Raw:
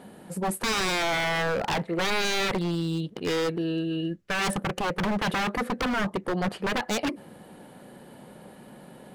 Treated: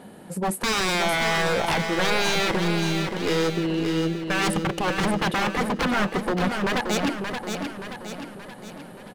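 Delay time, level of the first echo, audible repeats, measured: 0.576 s, -6.0 dB, 5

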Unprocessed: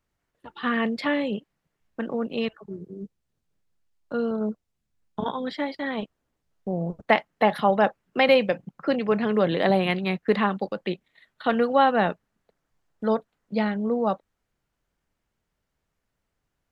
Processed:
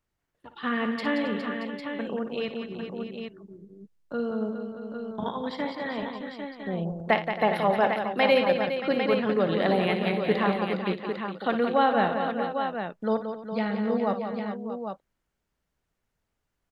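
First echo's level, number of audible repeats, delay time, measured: -11.5 dB, 6, 59 ms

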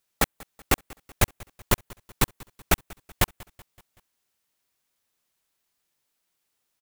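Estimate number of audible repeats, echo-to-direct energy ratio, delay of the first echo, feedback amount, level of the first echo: 3, -21.5 dB, 0.189 s, 54%, -23.0 dB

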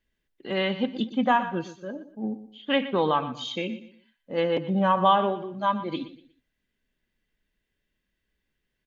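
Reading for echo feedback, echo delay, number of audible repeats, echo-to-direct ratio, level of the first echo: 31%, 0.12 s, 3, -13.5 dB, -14.0 dB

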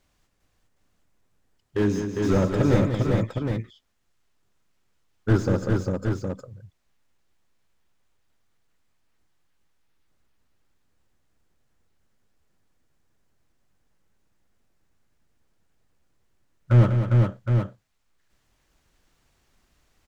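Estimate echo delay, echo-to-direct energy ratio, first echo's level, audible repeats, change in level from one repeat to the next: 0.105 s, -0.5 dB, -15.5 dB, 5, no steady repeat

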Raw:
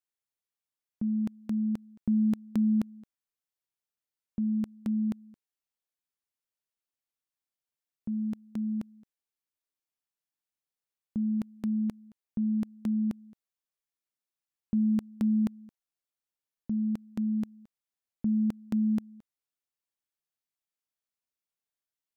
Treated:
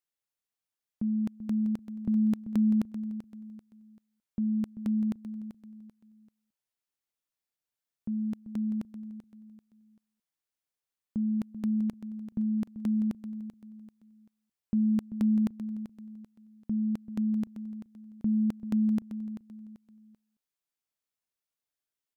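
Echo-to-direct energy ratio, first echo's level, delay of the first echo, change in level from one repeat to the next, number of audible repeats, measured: -11.0 dB, -11.5 dB, 0.388 s, -9.5 dB, 3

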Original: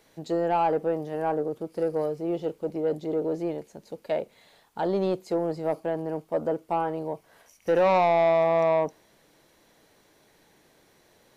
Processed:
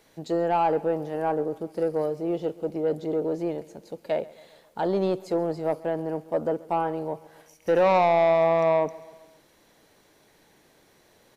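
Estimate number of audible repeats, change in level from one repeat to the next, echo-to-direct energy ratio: 3, -5.0 dB, -19.5 dB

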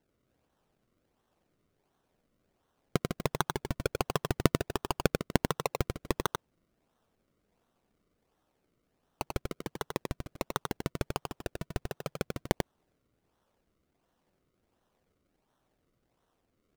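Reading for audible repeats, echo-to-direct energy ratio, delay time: 1, -4.5 dB, 92 ms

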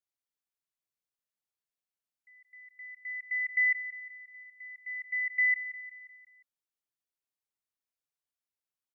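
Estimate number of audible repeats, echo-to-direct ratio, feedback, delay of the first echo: 4, -12.5 dB, 54%, 0.177 s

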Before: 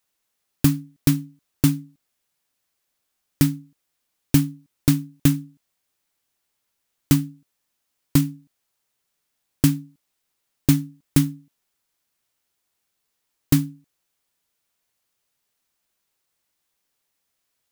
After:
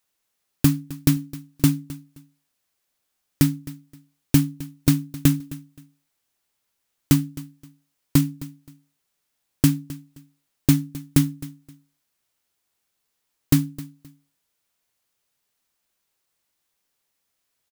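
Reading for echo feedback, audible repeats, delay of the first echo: 24%, 2, 0.262 s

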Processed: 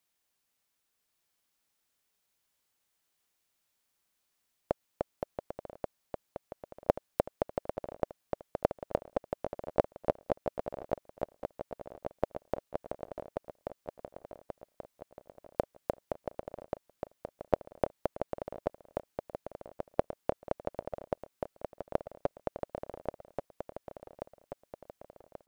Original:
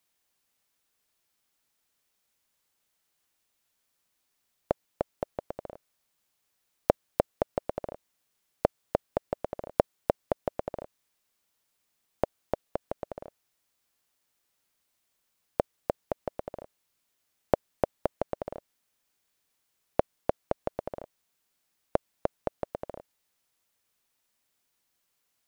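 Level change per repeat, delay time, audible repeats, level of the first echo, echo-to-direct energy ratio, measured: -6.0 dB, 1.133 s, 5, -6.0 dB, -5.0 dB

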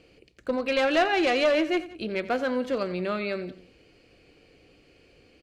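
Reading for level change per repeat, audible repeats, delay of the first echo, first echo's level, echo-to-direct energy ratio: -4.5 dB, 2, 88 ms, -16.0 dB, -15.0 dB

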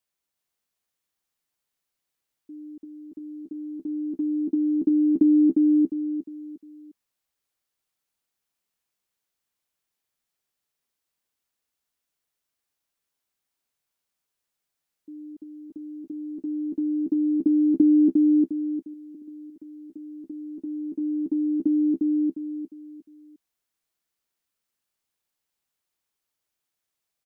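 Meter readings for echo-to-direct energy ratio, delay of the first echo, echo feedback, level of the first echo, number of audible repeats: -3.0 dB, 0.354 s, 33%, -3.5 dB, 4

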